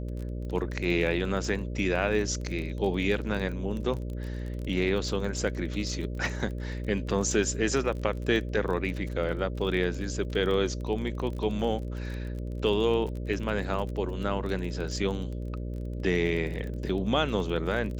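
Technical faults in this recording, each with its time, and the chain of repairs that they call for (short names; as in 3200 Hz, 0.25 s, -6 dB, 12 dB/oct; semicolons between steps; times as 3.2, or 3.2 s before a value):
buzz 60 Hz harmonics 10 -34 dBFS
crackle 27/s -34 dBFS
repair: de-click; de-hum 60 Hz, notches 10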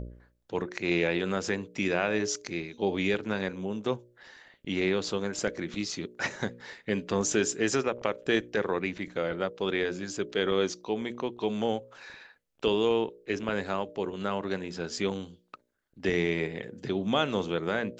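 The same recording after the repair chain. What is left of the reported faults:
none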